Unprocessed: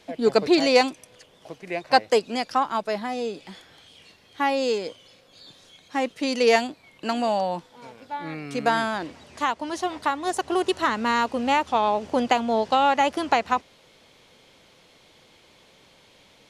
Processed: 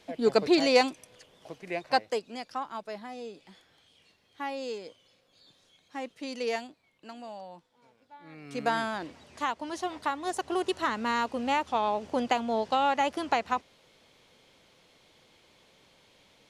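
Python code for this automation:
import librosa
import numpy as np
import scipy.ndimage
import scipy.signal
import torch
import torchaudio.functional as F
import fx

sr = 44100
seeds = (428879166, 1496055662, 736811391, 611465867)

y = fx.gain(x, sr, db=fx.line((1.77, -4.0), (2.22, -12.0), (6.42, -12.0), (7.12, -19.0), (8.19, -19.0), (8.59, -6.0)))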